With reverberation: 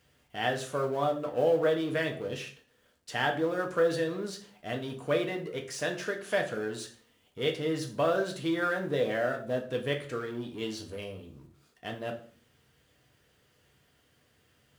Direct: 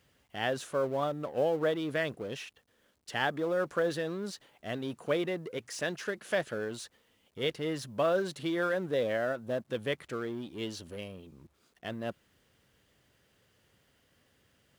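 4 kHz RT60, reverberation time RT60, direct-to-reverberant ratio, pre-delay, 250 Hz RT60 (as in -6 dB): 0.40 s, 0.45 s, 2.0 dB, 3 ms, 0.55 s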